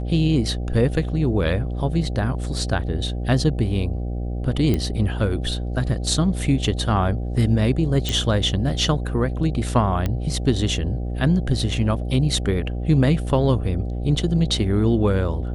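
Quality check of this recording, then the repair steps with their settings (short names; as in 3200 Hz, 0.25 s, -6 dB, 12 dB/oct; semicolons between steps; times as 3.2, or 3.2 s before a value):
buzz 60 Hz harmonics 13 -26 dBFS
4.74 pop -10 dBFS
8.09 pop
10.06 pop -11 dBFS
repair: de-click; de-hum 60 Hz, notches 13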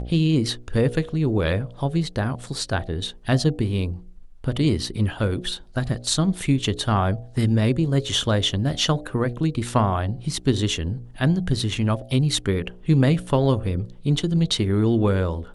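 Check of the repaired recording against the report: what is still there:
none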